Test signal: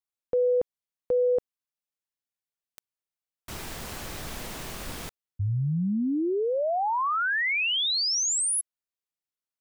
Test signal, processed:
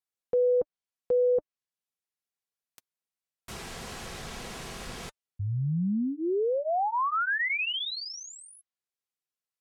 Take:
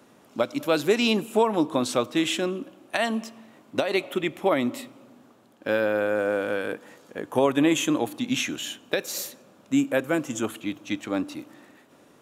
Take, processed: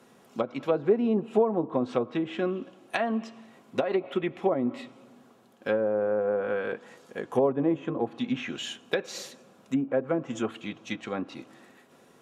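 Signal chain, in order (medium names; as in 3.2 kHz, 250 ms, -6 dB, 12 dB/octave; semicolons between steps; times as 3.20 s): low-pass that closes with the level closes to 720 Hz, closed at -19 dBFS; peaking EQ 82 Hz -5 dB 1.2 oct; comb of notches 300 Hz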